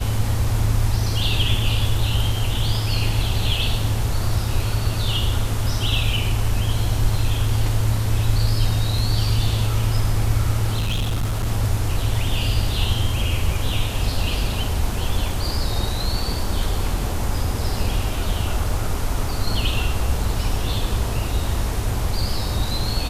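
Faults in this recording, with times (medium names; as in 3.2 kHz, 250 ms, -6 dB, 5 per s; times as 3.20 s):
10.77–11.46 s: clipped -18 dBFS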